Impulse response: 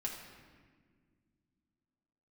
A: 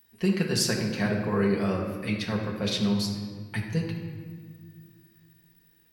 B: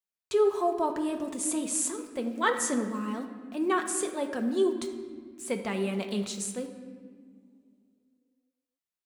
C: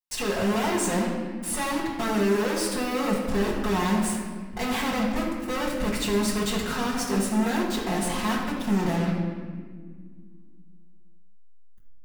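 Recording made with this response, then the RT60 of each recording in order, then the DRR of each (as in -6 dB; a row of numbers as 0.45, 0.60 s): A; not exponential, not exponential, 1.7 s; -2.5, 3.5, -8.0 dB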